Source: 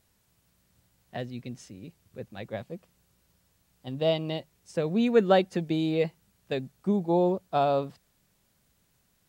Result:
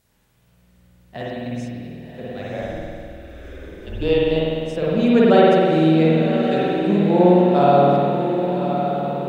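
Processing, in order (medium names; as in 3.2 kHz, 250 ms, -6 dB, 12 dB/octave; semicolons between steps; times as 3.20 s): echo that smears into a reverb 1077 ms, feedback 53%, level -7.5 dB; 2.61–4.31 s: frequency shift -170 Hz; spring tank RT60 2.2 s, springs 50 ms, chirp 55 ms, DRR -6.5 dB; trim +2 dB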